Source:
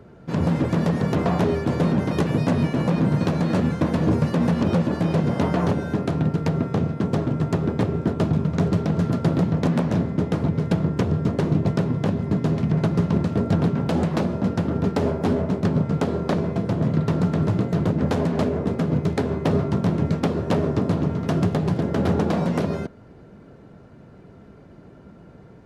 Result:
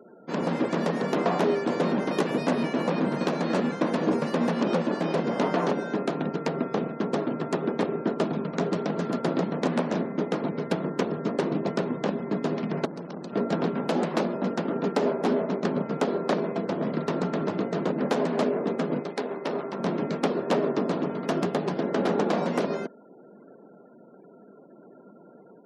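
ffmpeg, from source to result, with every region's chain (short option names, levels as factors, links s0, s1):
-filter_complex "[0:a]asettb=1/sr,asplit=3[s0][s1][s2];[s0]atrim=end=12.854[s3];[s1]atrim=start=12.85:end=13.33,asetpts=PTS-STARTPTS,afade=t=in:d=0.004:c=qsin,afade=t=out:st=0.476:d=0.004:c=qsin,highshelf=f=2100:g=2.5,acrossover=split=250|3000[s4][s5][s6];[s5]acompressor=threshold=0.0178:ratio=5:attack=3.2:release=140:knee=2.83:detection=peak[s7];[s4][s7][s6]amix=inputs=3:normalize=0,aeval=exprs='(tanh(22.4*val(0)+0.8)-tanh(0.8))/22.4':c=same[s8];[s2]atrim=start=13.326[s9];[s3][s8]acrossfade=d=0.004:c1=hsin:c2=qsin[s10];[s10][s9]acrossfade=d=0.004:c1=qsin:c2=hsin,asettb=1/sr,asplit=3[s11][s12][s13];[s11]atrim=end=19.034[s14];[s12]atrim=start=19.03:end=19.79,asetpts=PTS-STARTPTS,afade=t=in:d=0.004:c=qsin,afade=t=out:st=0.756:d=0.004:c=qsin,aeval=exprs='(tanh(7.08*val(0)+0.55)-tanh(0.55))/7.08':c=same,lowshelf=f=180:g=-10.5[s15];[s13]atrim=start=19.786[s16];[s14][s15]acrossfade=d=0.004:c1=hsin:c2=qsin[s17];[s17][s16]acrossfade=d=0.004:c1=qsin:c2=hsin,highpass=f=230:w=0.5412,highpass=f=230:w=1.3066,equalizer=f=290:w=4.2:g=-3,afftfilt=real='re*gte(hypot(re,im),0.00355)':imag='im*gte(hypot(re,im),0.00355)':win_size=1024:overlap=0.75"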